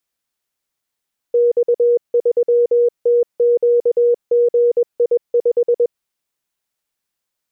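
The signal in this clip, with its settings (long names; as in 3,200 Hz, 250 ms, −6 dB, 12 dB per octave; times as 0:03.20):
Morse code "X3TQGI5" 21 words per minute 478 Hz −10 dBFS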